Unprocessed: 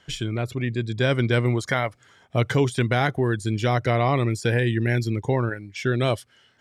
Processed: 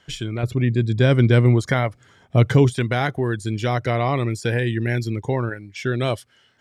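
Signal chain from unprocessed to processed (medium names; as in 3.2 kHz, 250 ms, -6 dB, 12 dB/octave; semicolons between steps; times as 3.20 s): 0.43–2.73 s: bass shelf 410 Hz +8.5 dB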